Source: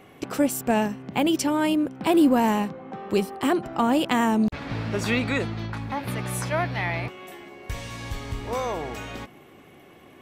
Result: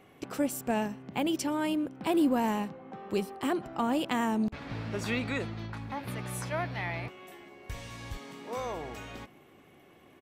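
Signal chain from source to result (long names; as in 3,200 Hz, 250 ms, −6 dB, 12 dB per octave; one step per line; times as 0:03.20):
0:08.17–0:08.57: elliptic high-pass filter 150 Hz
far-end echo of a speakerphone 120 ms, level −24 dB
level −7.5 dB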